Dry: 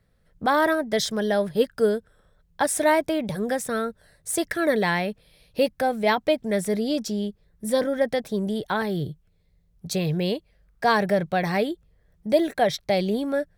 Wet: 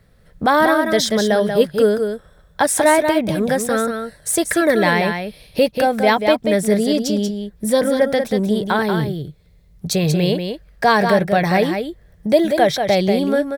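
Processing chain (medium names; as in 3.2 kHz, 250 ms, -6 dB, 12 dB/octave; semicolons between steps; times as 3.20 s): in parallel at +2.5 dB: compression, threshold -36 dBFS, peak gain reduction 20.5 dB; on the sum: delay 186 ms -6.5 dB; trim +4.5 dB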